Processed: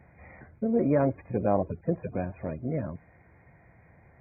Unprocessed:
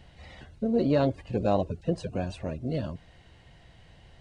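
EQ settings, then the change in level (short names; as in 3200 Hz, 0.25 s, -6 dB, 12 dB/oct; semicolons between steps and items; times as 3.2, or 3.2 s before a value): HPF 83 Hz; brick-wall FIR low-pass 2500 Hz; 0.0 dB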